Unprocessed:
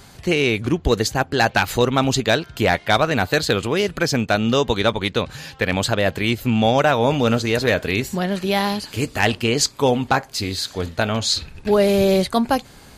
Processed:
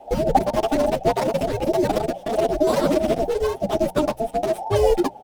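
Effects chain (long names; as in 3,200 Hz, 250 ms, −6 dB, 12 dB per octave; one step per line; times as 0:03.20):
running median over 41 samples
low-shelf EQ 130 Hz +11.5 dB
frequency shifter −370 Hz
change of speed 2.48×
parametric band 87 Hz −8.5 dB 0.63 octaves
mains-hum notches 60/120/180 Hz
barber-pole flanger 8.5 ms +2.8 Hz
level +1 dB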